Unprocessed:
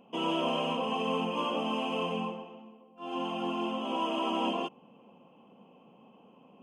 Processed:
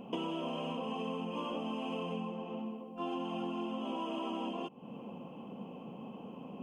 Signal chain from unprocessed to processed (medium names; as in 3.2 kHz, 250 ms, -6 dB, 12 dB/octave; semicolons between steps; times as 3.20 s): bass shelf 370 Hz +8.5 dB; compression 16:1, threshold -41 dBFS, peak gain reduction 19 dB; trim +6.5 dB